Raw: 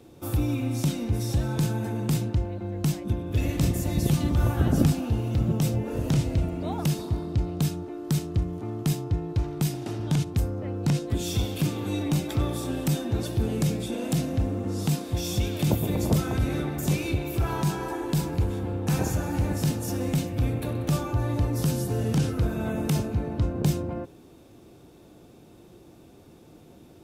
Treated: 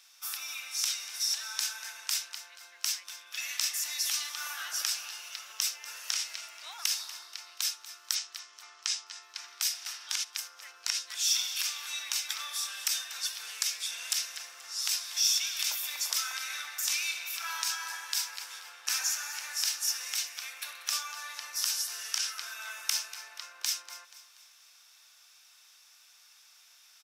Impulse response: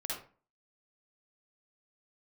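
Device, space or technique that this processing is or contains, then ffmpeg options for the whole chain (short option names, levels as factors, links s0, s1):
headphones lying on a table: -filter_complex "[0:a]asplit=3[s0][s1][s2];[s0]afade=t=out:st=8.14:d=0.02[s3];[s1]lowpass=f=7600:w=0.5412,lowpass=f=7600:w=1.3066,afade=t=in:st=8.14:d=0.02,afade=t=out:st=9.21:d=0.02[s4];[s2]afade=t=in:st=9.21:d=0.02[s5];[s3][s4][s5]amix=inputs=3:normalize=0,highpass=f=1400:w=0.5412,highpass=f=1400:w=1.3066,equalizer=f=5500:t=o:w=0.47:g=11,aecho=1:1:240|480|720|960:0.168|0.0739|0.0325|0.0143,volume=1.41"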